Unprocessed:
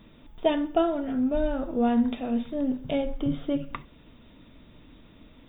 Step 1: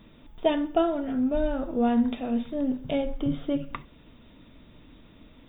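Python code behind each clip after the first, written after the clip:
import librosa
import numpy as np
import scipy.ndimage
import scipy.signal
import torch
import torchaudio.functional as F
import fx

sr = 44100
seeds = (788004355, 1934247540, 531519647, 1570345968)

y = x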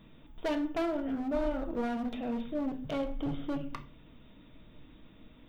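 y = np.clip(x, -10.0 ** (-25.0 / 20.0), 10.0 ** (-25.0 / 20.0))
y = fx.room_shoebox(y, sr, seeds[0], volume_m3=290.0, walls='furnished', distance_m=0.58)
y = y * 10.0 ** (-4.5 / 20.0)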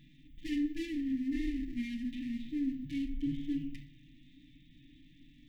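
y = fx.lower_of_two(x, sr, delay_ms=7.1)
y = fx.hpss(y, sr, part='harmonic', gain_db=9)
y = fx.brickwall_bandstop(y, sr, low_hz=340.0, high_hz=1700.0)
y = y * 10.0 ** (-7.5 / 20.0)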